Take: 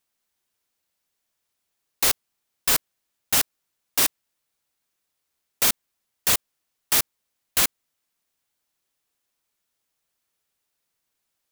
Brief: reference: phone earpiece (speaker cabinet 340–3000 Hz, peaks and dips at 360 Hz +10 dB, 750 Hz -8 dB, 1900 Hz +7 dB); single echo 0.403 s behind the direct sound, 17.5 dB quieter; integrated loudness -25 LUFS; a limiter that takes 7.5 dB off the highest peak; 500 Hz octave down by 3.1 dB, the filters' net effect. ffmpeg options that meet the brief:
-af "equalizer=f=500:t=o:g=-5.5,alimiter=limit=-12dB:level=0:latency=1,highpass=340,equalizer=f=360:t=q:w=4:g=10,equalizer=f=750:t=q:w=4:g=-8,equalizer=f=1.9k:t=q:w=4:g=7,lowpass=f=3k:w=0.5412,lowpass=f=3k:w=1.3066,aecho=1:1:403:0.133,volume=9.5dB"

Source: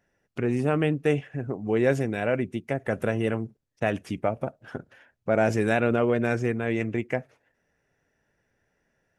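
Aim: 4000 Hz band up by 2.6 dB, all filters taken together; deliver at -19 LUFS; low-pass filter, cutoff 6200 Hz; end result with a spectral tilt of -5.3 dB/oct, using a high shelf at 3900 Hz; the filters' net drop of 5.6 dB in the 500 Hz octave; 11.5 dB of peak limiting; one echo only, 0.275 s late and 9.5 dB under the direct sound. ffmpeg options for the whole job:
-af "lowpass=6.2k,equalizer=f=500:t=o:g=-7,highshelf=f=3.9k:g=-3.5,equalizer=f=4k:t=o:g=6.5,alimiter=limit=-21.5dB:level=0:latency=1,aecho=1:1:275:0.335,volume=14.5dB"

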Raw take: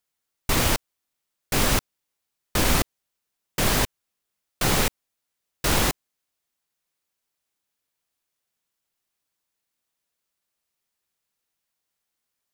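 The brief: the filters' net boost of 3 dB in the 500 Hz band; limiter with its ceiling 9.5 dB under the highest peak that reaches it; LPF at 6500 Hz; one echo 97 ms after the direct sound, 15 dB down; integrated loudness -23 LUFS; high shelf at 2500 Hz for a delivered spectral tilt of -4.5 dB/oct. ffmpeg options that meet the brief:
-af "lowpass=6.5k,equalizer=f=500:t=o:g=4,highshelf=f=2.5k:g=-5,alimiter=limit=-18.5dB:level=0:latency=1,aecho=1:1:97:0.178,volume=8.5dB"

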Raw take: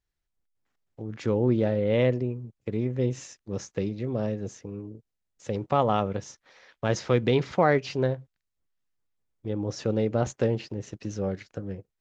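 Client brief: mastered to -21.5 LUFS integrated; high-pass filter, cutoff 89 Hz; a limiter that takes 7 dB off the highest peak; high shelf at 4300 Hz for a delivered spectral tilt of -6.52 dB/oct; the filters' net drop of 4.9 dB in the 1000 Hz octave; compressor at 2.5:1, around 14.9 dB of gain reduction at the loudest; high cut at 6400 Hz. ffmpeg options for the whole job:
-af "highpass=89,lowpass=6.4k,equalizer=f=1k:t=o:g=-7.5,highshelf=f=4.3k:g=3.5,acompressor=threshold=-42dB:ratio=2.5,volume=21.5dB,alimiter=limit=-8dB:level=0:latency=1"

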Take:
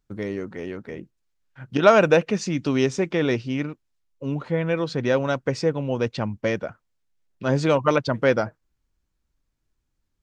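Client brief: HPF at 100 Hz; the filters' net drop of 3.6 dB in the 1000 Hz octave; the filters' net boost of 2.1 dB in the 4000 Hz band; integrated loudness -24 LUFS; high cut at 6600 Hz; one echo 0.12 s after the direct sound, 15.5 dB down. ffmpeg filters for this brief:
-af "highpass=100,lowpass=6.6k,equalizer=f=1k:t=o:g=-5.5,equalizer=f=4k:t=o:g=3.5,aecho=1:1:120:0.168"

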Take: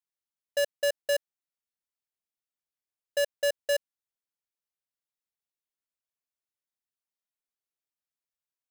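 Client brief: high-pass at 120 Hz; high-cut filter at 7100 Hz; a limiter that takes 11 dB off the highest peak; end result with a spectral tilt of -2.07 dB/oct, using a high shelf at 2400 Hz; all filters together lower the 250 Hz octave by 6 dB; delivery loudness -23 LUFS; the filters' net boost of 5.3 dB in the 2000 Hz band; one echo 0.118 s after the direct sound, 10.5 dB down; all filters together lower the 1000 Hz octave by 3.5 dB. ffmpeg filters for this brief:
-af "highpass=120,lowpass=7.1k,equalizer=f=250:t=o:g=-8,equalizer=f=1k:t=o:g=-8,equalizer=f=2k:t=o:g=6,highshelf=f=2.4k:g=8,alimiter=level_in=1dB:limit=-24dB:level=0:latency=1,volume=-1dB,aecho=1:1:118:0.299,volume=16dB"

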